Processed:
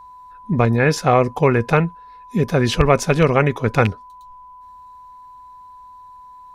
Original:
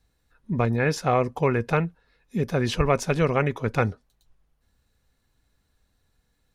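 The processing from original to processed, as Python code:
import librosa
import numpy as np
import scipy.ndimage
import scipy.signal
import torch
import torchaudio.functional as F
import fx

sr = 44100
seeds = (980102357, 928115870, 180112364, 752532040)

y = fx.rattle_buzz(x, sr, strikes_db=-20.0, level_db=-17.0)
y = y + 10.0 ** (-46.0 / 20.0) * np.sin(2.0 * np.pi * 1000.0 * np.arange(len(y)) / sr)
y = F.gain(torch.from_numpy(y), 7.0).numpy()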